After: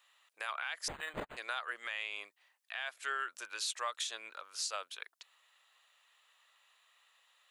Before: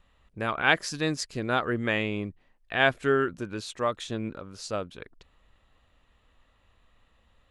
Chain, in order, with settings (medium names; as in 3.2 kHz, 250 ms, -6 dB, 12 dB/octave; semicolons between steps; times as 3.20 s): Bessel high-pass 1.1 kHz, order 4; treble shelf 4 kHz +10 dB; compression 3:1, threshold -34 dBFS, peak gain reduction 14 dB; peak limiter -25.5 dBFS, peak gain reduction 10.5 dB; 0.88–1.37 s: decimation joined by straight lines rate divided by 8×